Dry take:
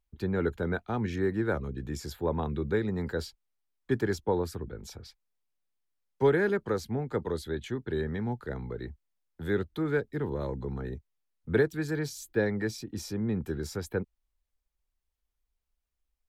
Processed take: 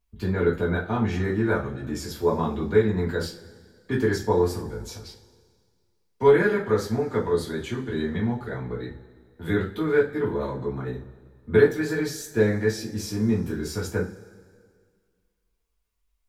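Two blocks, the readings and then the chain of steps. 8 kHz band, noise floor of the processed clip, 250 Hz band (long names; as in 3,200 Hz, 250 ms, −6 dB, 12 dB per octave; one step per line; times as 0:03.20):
+6.5 dB, −73 dBFS, +5.5 dB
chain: coupled-rooms reverb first 0.3 s, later 1.9 s, from −20 dB, DRR −6 dB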